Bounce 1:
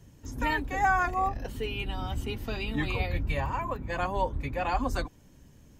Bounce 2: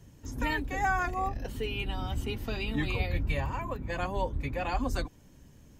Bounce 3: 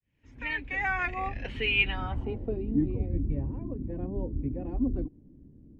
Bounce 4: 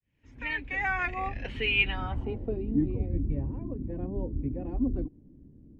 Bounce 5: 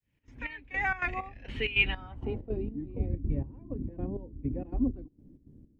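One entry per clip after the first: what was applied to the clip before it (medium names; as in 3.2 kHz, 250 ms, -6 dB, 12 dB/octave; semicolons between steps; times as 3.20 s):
dynamic bell 1 kHz, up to -5 dB, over -39 dBFS, Q 0.87
fade-in on the opening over 1.52 s; resonant high shelf 1.7 kHz +6 dB, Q 1.5; low-pass sweep 2.3 kHz -> 310 Hz, 1.85–2.64 s
no audible change
trance gate "xx.xx..." 162 bpm -12 dB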